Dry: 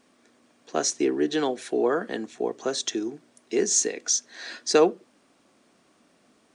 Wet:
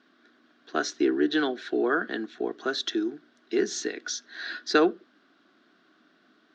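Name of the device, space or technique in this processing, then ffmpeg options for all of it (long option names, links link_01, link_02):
kitchen radio: -af "highpass=220,equalizer=frequency=320:width_type=q:width=4:gain=4,equalizer=frequency=520:width_type=q:width=4:gain=-10,equalizer=frequency=890:width_type=q:width=4:gain=-8,equalizer=frequency=1500:width_type=q:width=4:gain=10,equalizer=frequency=2400:width_type=q:width=4:gain=-6,equalizer=frequency=3700:width_type=q:width=4:gain=4,lowpass=frequency=4500:width=0.5412,lowpass=frequency=4500:width=1.3066"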